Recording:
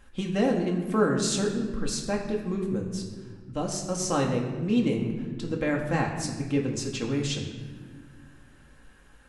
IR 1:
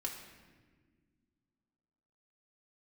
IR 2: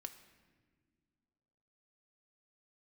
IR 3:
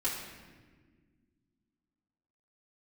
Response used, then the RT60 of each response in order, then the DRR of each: 1; 1.6 s, non-exponential decay, 1.6 s; −1.0, 7.0, −8.0 decibels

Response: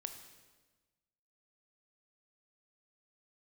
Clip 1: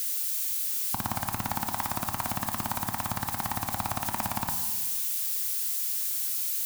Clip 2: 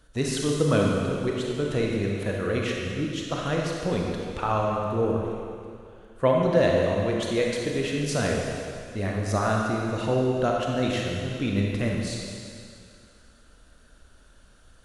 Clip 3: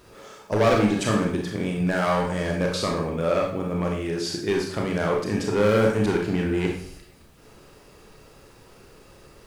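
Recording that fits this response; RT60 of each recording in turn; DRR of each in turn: 1; 1.3, 2.3, 0.55 seconds; 6.5, −1.5, −0.5 decibels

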